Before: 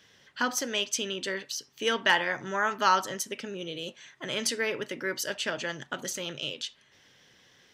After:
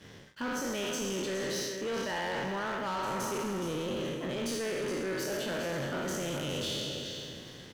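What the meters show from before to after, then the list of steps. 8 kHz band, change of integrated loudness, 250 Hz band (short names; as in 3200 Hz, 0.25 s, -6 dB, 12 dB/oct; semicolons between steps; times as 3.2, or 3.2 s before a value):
-5.0 dB, -4.5 dB, +3.0 dB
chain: spectral trails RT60 1.54 s; tilt shelf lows +8 dB, about 750 Hz; reverse; compressor 12:1, threshold -35 dBFS, peak gain reduction 17.5 dB; reverse; feedback echo 0.419 s, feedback 26%, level -10 dB; sample leveller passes 3; gain -3 dB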